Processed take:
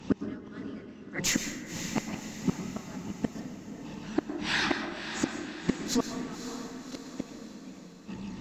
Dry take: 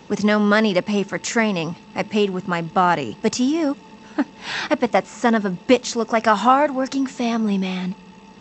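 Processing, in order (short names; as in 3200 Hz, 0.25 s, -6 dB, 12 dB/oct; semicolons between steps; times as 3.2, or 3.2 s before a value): tracing distortion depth 0.022 ms; de-hum 58.94 Hz, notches 18; chorus voices 4, 1.4 Hz, delay 29 ms, depth 3 ms; resonant low shelf 340 Hz +7 dB, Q 1.5; in parallel at -1 dB: compressor 10:1, threshold -28 dBFS, peak gain reduction 19.5 dB; on the sum: added harmonics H 7 -42 dB, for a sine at -1.5 dBFS; flipped gate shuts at -13 dBFS, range -29 dB; harmonic-percussive split harmonic -9 dB; on a send: diffused feedback echo 0.558 s, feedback 53%, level -9 dB; on the sum: plate-style reverb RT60 1.1 s, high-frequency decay 0.55×, pre-delay 0.1 s, DRR 6.5 dB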